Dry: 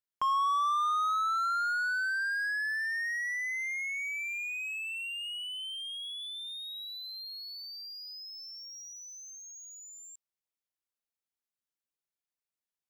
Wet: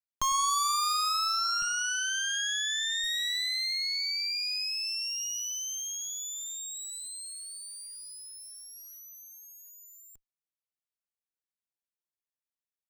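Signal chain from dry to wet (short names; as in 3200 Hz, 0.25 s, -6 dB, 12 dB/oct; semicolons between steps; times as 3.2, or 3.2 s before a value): 1.62–3.04 formant sharpening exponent 3; added harmonics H 3 -16 dB, 7 -34 dB, 8 -7 dB, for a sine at -22.5 dBFS; lo-fi delay 0.103 s, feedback 35%, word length 8-bit, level -13 dB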